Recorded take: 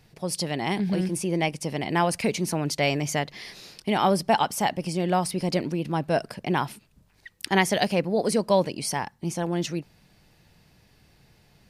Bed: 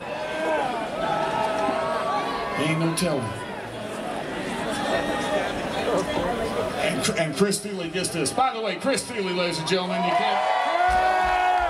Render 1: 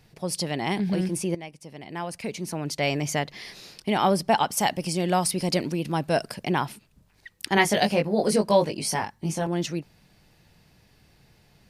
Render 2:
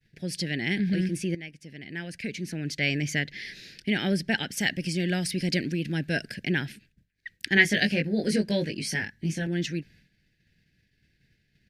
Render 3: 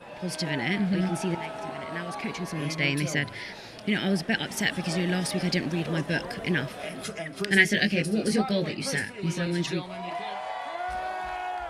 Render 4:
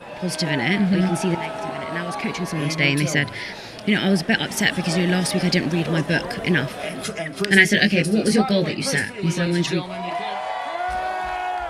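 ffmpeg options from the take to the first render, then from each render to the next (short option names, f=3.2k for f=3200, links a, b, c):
-filter_complex "[0:a]asettb=1/sr,asplit=3[a][b][c];[a]atrim=end=4.574[d];[b]atrim=start=4.57:end=6.5,asetpts=PTS-STARTPTS,afade=t=in:d=0.004:c=qsin,afade=t=out:st=1.926:d=0.004:c=qsin,equalizer=f=12k:t=o:w=2.6:g=7[e];[c]atrim=start=6.496[f];[d][e]acrossfade=d=0.004:c1=hsin:c2=qsin[g];[g][f]acrossfade=d=0.004:c1=qsin:c2=hsin,asettb=1/sr,asplit=3[h][i][j];[h]atrim=end=7.554[k];[i]atrim=start=7.55:end=9.47,asetpts=PTS-STARTPTS,afade=t=in:d=0.004:c=qsin,afade=t=out:st=1.916:d=0.004:c=qsin,asplit=2[l][m];[m]adelay=19,volume=-4dB[n];[l][n]amix=inputs=2:normalize=0,atrim=end_sample=84672[o];[j]atrim=start=9.466[p];[k][o]acrossfade=d=0.004:c1=hsin:c2=qsin[q];[q][p]acrossfade=d=0.004:c1=qsin:c2=hsin,asplit=2[r][s];[r]atrim=end=1.35,asetpts=PTS-STARTPTS,afade=t=out:st=1.346:d=0.004:c=hsin:silence=0.188365[t];[s]atrim=start=1.35,asetpts=PTS-STARTPTS,afade=t=in:d=1.68:c=qua:silence=0.188365[u];[t][u]concat=n=2:v=0:a=1"
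-af "agate=range=-33dB:threshold=-50dB:ratio=3:detection=peak,firequalizer=gain_entry='entry(270,0);entry(1100,-29);entry(1600,6);entry(2700,1);entry(9400,-9)':delay=0.05:min_phase=1"
-filter_complex "[1:a]volume=-12dB[a];[0:a][a]amix=inputs=2:normalize=0"
-af "volume=7dB,alimiter=limit=-1dB:level=0:latency=1"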